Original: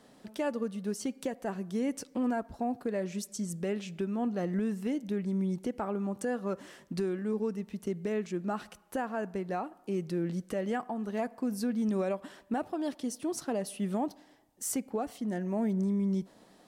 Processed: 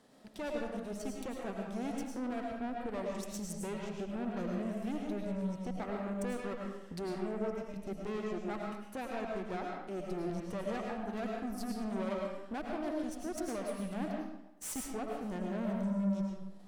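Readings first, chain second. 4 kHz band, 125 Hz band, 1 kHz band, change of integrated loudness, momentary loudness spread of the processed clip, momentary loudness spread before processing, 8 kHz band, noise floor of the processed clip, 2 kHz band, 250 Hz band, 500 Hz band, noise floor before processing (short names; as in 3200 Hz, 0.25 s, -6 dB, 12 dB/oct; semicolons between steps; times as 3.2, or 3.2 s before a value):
-3.0 dB, -5.0 dB, -3.5 dB, -4.5 dB, 5 LU, 6 LU, -5.5 dB, -50 dBFS, -2.5 dB, -5.0 dB, -4.5 dB, -60 dBFS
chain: transient shaper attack -3 dB, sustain -8 dB; tube stage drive 35 dB, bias 0.8; digital reverb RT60 0.89 s, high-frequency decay 0.75×, pre-delay 65 ms, DRR -0.5 dB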